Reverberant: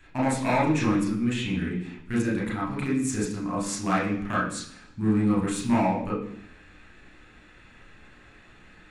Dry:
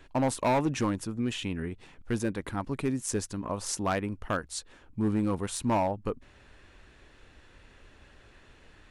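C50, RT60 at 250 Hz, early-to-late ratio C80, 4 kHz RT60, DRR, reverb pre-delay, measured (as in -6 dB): 5.0 dB, 0.85 s, 8.5 dB, 0.90 s, -5.5 dB, 30 ms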